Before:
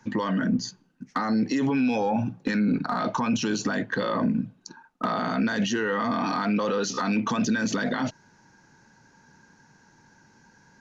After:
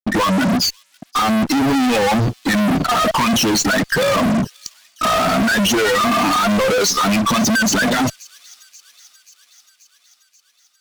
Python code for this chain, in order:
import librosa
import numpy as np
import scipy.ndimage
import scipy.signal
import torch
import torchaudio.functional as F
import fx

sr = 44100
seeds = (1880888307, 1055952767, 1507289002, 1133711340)

y = fx.bin_expand(x, sr, power=2.0)
y = fx.fuzz(y, sr, gain_db=46.0, gate_db=-52.0)
y = fx.echo_wet_highpass(y, sr, ms=533, feedback_pct=66, hz=3900.0, wet_db=-19.5)
y = F.gain(torch.from_numpy(y), -1.5).numpy()